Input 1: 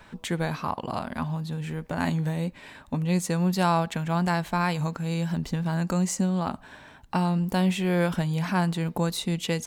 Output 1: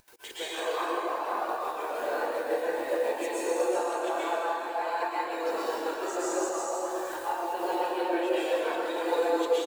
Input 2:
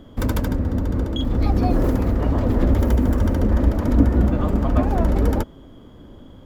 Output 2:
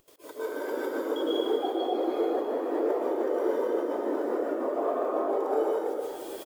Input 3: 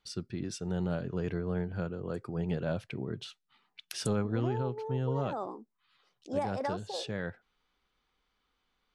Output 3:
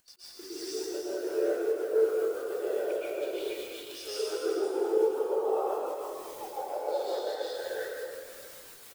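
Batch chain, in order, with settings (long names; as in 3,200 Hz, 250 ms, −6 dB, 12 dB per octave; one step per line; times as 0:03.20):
delay that plays each chunk backwards 286 ms, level −0.5 dB
Butterworth high-pass 340 Hz 48 dB per octave
in parallel at −7.5 dB: bit-depth reduction 6 bits, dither triangular
on the sum: downward compressor 8 to 1, threshold −32 dBFS
soft clipping −24 dBFS
gate pattern ".x.x.xxxx" 192 BPM −24 dB
on a send: echo with shifted repeats 146 ms, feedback 33%, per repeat −36 Hz, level −11 dB
on the sum: dense smooth reverb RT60 3.1 s, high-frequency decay 0.9×, pre-delay 100 ms, DRR −9 dB
upward compression, threshold −39 dBFS
every bin expanded away from the loudest bin 1.5 to 1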